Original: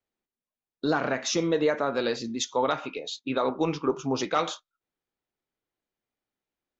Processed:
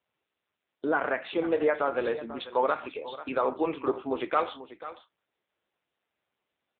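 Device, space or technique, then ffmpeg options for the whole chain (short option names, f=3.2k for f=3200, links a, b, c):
satellite phone: -af "highpass=360,lowpass=3.4k,aecho=1:1:491:0.188,volume=1.5dB" -ar 8000 -c:a libopencore_amrnb -b:a 6700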